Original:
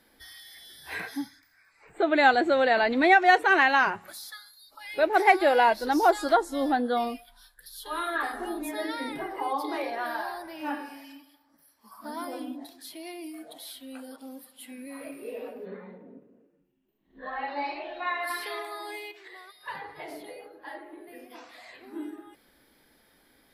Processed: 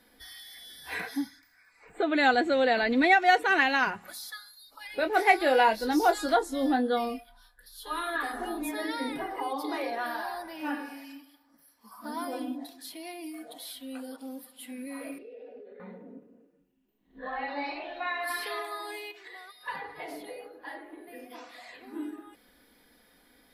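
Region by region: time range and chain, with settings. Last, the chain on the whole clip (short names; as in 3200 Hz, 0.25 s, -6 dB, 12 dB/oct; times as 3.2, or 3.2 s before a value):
4.87–7.87 doubler 23 ms -8.5 dB + mismatched tape noise reduction decoder only
15.18–15.8 air absorption 200 m + fixed phaser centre 450 Hz, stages 4 + compressor 12:1, threshold -44 dBFS
whole clip: comb 4.1 ms, depth 38%; dynamic EQ 880 Hz, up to -5 dB, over -32 dBFS, Q 0.73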